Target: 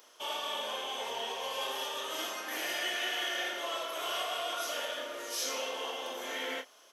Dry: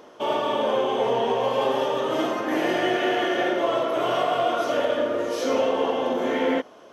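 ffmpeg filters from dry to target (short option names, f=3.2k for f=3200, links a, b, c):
-filter_complex "[0:a]aderivative,asplit=2[a][b];[b]adelay=31,volume=-8dB[c];[a][c]amix=inputs=2:normalize=0,volume=4.5dB"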